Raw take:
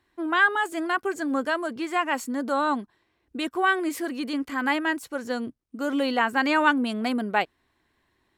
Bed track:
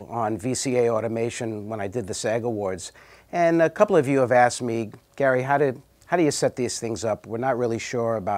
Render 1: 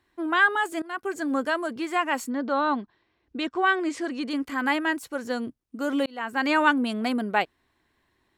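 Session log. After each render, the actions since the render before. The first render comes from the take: 0.82–1.31 fade in equal-power, from -22.5 dB; 2.29–4.29 LPF 4300 Hz -> 8400 Hz 24 dB/oct; 6.06–6.51 fade in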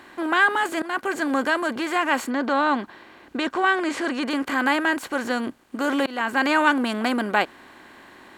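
per-bin compression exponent 0.6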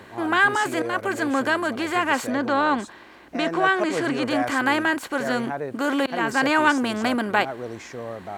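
add bed track -9.5 dB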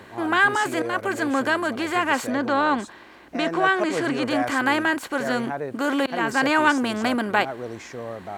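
nothing audible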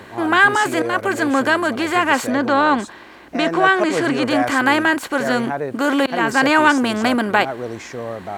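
gain +5.5 dB; limiter -2 dBFS, peak gain reduction 1.5 dB

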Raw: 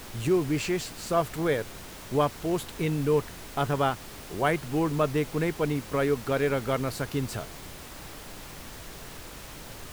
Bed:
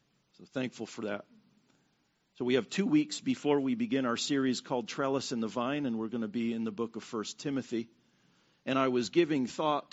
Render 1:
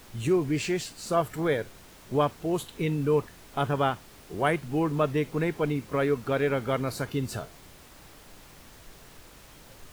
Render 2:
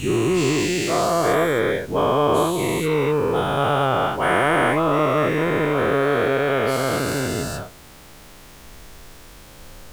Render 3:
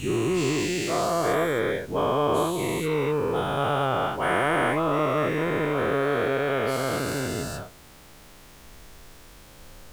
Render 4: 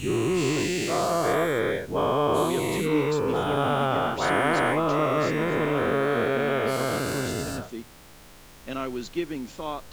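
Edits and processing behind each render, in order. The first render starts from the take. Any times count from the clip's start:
noise print and reduce 8 dB
spectral dilation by 0.48 s
gain -5 dB
add bed -3 dB

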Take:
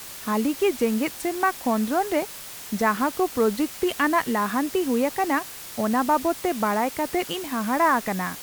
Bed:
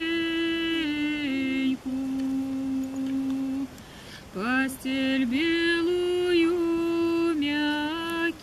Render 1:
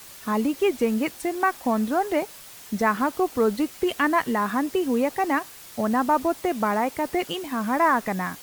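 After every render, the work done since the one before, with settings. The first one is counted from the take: denoiser 6 dB, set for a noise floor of -39 dBFS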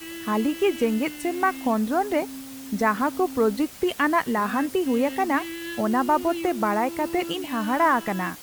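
add bed -10.5 dB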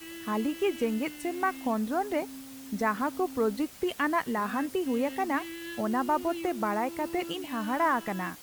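gain -6 dB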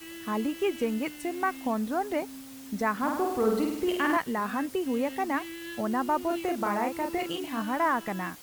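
2.98–4.17 flutter echo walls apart 8.6 m, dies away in 0.86 s; 6.27–7.62 doubler 35 ms -4.5 dB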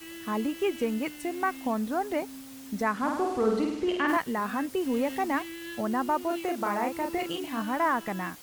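2.83–4.07 LPF 12000 Hz -> 5000 Hz; 4.77–5.42 G.711 law mismatch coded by mu; 6.11–6.83 low shelf 130 Hz -8.5 dB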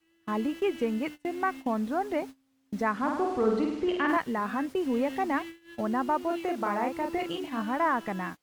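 gate -37 dBFS, range -25 dB; LPF 3500 Hz 6 dB/oct

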